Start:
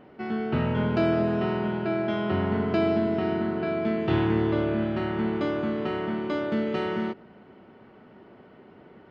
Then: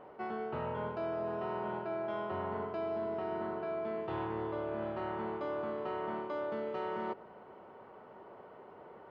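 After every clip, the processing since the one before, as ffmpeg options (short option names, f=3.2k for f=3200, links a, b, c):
-af "equalizer=f=250:t=o:w=1:g=-5,equalizer=f=500:t=o:w=1:g=9,equalizer=f=1k:t=o:w=1:g=12,areverse,acompressor=threshold=-26dB:ratio=6,areverse,volume=-8.5dB"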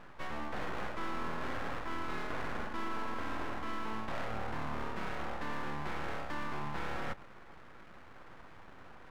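-af "aeval=exprs='abs(val(0))':c=same,volume=2dB"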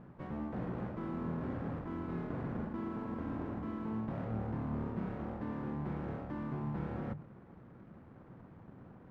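-af "acrusher=bits=6:mode=log:mix=0:aa=0.000001,bandpass=f=150:t=q:w=1.2:csg=0,bandreject=f=50:t=h:w=6,bandreject=f=100:t=h:w=6,bandreject=f=150:t=h:w=6,volume=10.5dB"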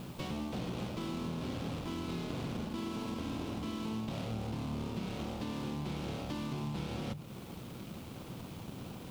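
-af "acompressor=threshold=-47dB:ratio=3,aexciter=amount=10.4:drive=7.5:freq=2.7k,volume=9dB"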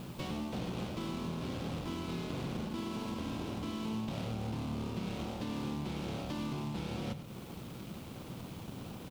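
-af "aecho=1:1:92:0.237"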